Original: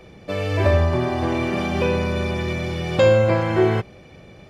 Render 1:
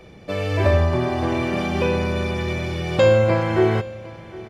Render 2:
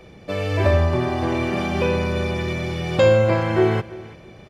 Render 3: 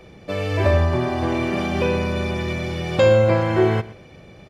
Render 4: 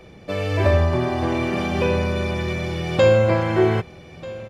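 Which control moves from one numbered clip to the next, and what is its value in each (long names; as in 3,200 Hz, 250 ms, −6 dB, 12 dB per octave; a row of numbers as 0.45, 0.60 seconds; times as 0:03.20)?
repeating echo, delay time: 757, 334, 118, 1,239 milliseconds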